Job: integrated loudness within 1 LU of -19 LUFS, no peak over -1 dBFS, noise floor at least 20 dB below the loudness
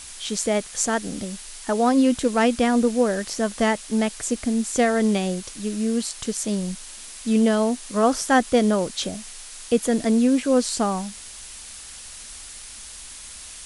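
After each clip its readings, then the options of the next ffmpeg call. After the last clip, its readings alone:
noise floor -40 dBFS; noise floor target -43 dBFS; loudness -22.5 LUFS; peak -7.0 dBFS; loudness target -19.0 LUFS
-> -af "afftdn=nr=6:nf=-40"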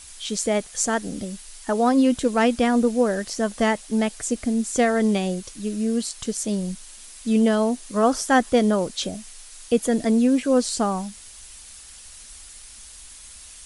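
noise floor -44 dBFS; loudness -22.5 LUFS; peak -7.0 dBFS; loudness target -19.0 LUFS
-> -af "volume=3.5dB"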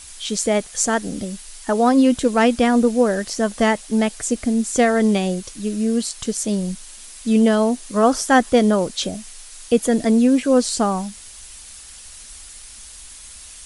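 loudness -19.0 LUFS; peak -3.5 dBFS; noise floor -40 dBFS

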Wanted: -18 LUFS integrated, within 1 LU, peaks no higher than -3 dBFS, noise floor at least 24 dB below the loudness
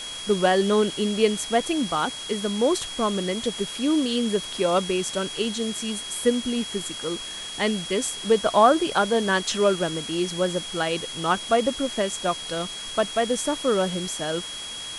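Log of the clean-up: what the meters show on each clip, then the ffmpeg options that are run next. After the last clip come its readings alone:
steady tone 3300 Hz; tone level -34 dBFS; noise floor -35 dBFS; noise floor target -48 dBFS; loudness -24.0 LUFS; peak -5.5 dBFS; loudness target -18.0 LUFS
-> -af "bandreject=f=3.3k:w=30"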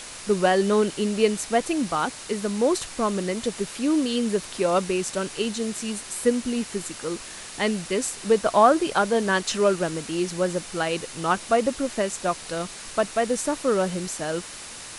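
steady tone none; noise floor -39 dBFS; noise floor target -49 dBFS
-> -af "afftdn=nr=10:nf=-39"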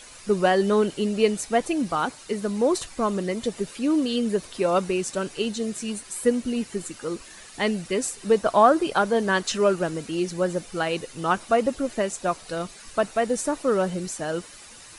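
noise floor -46 dBFS; noise floor target -49 dBFS
-> -af "afftdn=nr=6:nf=-46"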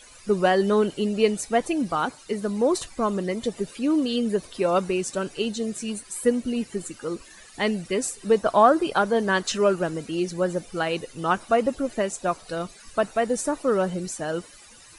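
noise floor -49 dBFS; loudness -25.0 LUFS; peak -5.0 dBFS; loudness target -18.0 LUFS
-> -af "volume=7dB,alimiter=limit=-3dB:level=0:latency=1"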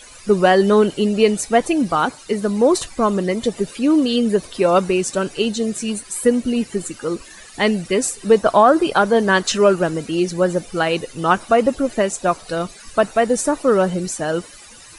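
loudness -18.0 LUFS; peak -3.0 dBFS; noise floor -42 dBFS

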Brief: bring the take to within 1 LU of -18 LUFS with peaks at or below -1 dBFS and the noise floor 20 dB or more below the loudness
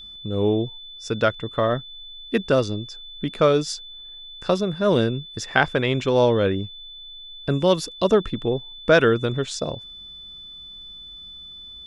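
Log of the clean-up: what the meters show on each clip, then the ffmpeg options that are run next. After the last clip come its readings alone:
steady tone 3500 Hz; tone level -38 dBFS; loudness -22.5 LUFS; peak -1.5 dBFS; loudness target -18.0 LUFS
-> -af "bandreject=f=3.5k:w=30"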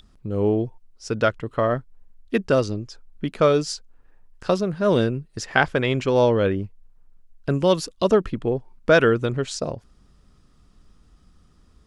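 steady tone none; loudness -22.5 LUFS; peak -1.5 dBFS; loudness target -18.0 LUFS
-> -af "volume=4.5dB,alimiter=limit=-1dB:level=0:latency=1"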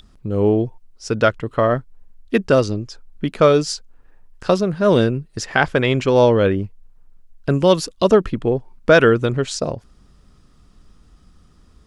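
loudness -18.0 LUFS; peak -1.0 dBFS; noise floor -52 dBFS

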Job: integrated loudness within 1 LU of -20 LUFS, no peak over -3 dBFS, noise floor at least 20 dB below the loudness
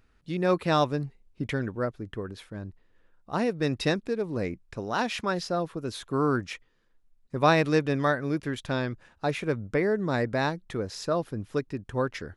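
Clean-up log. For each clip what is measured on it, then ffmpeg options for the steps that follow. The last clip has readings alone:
loudness -28.5 LUFS; peak -8.5 dBFS; loudness target -20.0 LUFS
-> -af "volume=8.5dB,alimiter=limit=-3dB:level=0:latency=1"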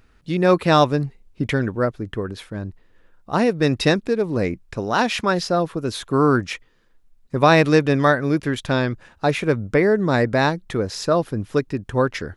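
loudness -20.5 LUFS; peak -3.0 dBFS; noise floor -57 dBFS

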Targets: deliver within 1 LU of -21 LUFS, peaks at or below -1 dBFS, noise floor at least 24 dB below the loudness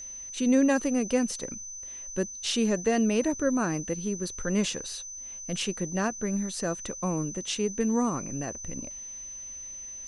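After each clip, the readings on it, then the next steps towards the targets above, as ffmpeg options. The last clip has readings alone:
steady tone 6100 Hz; tone level -38 dBFS; loudness -29.0 LUFS; peak -12.5 dBFS; loudness target -21.0 LUFS
-> -af "bandreject=f=6.1k:w=30"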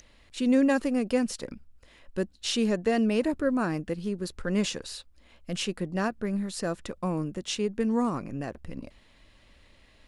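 steady tone none; loudness -29.0 LUFS; peak -12.5 dBFS; loudness target -21.0 LUFS
-> -af "volume=8dB"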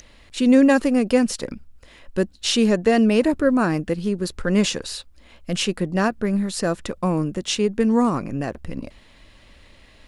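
loudness -21.0 LUFS; peak -4.5 dBFS; noise floor -51 dBFS

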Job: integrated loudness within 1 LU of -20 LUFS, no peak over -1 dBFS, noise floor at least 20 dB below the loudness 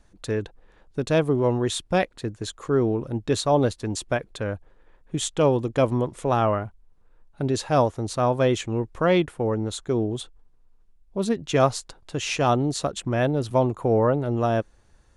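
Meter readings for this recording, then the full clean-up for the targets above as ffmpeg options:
loudness -24.5 LUFS; peak -7.0 dBFS; loudness target -20.0 LUFS
-> -af "volume=4.5dB"

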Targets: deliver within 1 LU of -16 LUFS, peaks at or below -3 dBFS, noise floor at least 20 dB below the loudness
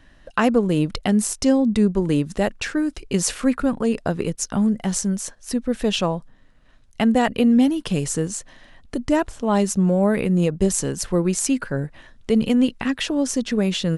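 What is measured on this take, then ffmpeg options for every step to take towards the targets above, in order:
loudness -21.5 LUFS; peak -5.0 dBFS; loudness target -16.0 LUFS
-> -af "volume=5.5dB,alimiter=limit=-3dB:level=0:latency=1"

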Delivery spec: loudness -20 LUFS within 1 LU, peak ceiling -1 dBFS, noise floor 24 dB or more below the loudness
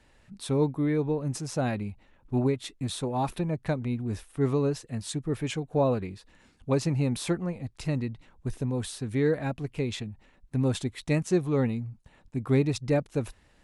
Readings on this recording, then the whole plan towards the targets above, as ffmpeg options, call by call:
loudness -29.5 LUFS; peak -12.5 dBFS; loudness target -20.0 LUFS
-> -af "volume=9.5dB"

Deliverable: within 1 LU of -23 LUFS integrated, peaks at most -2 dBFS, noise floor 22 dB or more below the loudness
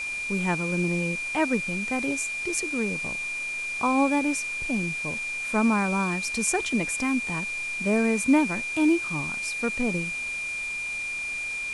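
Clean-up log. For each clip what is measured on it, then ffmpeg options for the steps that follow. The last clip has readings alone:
steady tone 2400 Hz; tone level -29 dBFS; noise floor -32 dBFS; noise floor target -48 dBFS; loudness -26.0 LUFS; peak -8.0 dBFS; loudness target -23.0 LUFS
-> -af "bandreject=f=2.4k:w=30"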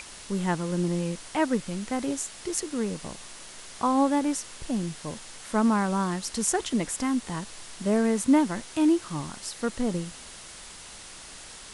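steady tone none; noise floor -45 dBFS; noise floor target -50 dBFS
-> -af "afftdn=nr=6:nf=-45"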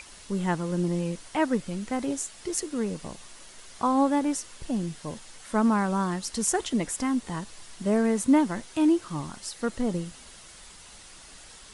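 noise floor -49 dBFS; noise floor target -50 dBFS
-> -af "afftdn=nr=6:nf=-49"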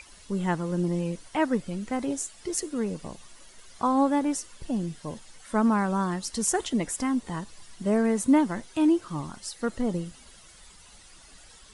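noise floor -52 dBFS; loudness -27.5 LUFS; peak -9.5 dBFS; loudness target -23.0 LUFS
-> -af "volume=4.5dB"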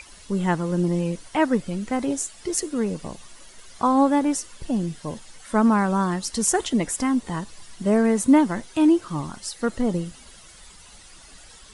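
loudness -23.0 LUFS; peak -5.0 dBFS; noise floor -48 dBFS

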